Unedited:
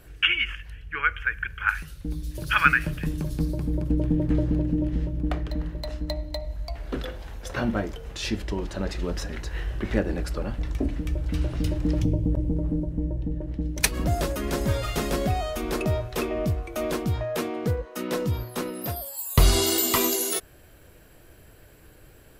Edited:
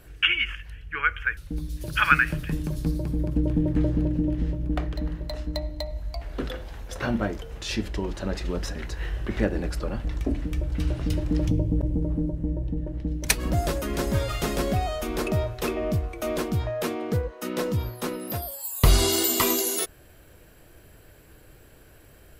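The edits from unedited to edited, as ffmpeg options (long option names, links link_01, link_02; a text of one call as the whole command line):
ffmpeg -i in.wav -filter_complex "[0:a]asplit=2[link_01][link_02];[link_01]atrim=end=1.372[link_03];[link_02]atrim=start=1.908[link_04];[link_03][link_04]acrossfade=duration=0.004:curve1=hsin:curve2=hsin" out.wav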